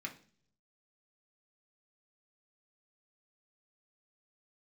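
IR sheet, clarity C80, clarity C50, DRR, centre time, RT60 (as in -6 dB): 18.5 dB, 13.5 dB, 0.0 dB, 10 ms, 0.50 s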